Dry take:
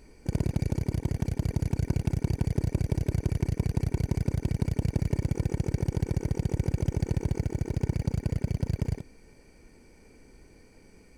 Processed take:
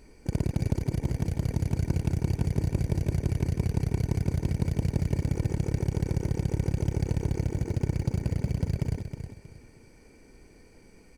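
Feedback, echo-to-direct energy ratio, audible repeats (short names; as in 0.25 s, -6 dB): 28%, -8.0 dB, 3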